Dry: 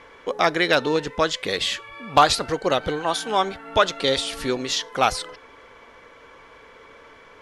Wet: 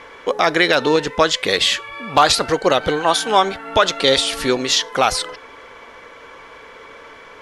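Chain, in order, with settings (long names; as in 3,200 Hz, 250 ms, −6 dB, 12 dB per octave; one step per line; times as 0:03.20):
low-shelf EQ 270 Hz −5 dB
boost into a limiter +9 dB
level −1 dB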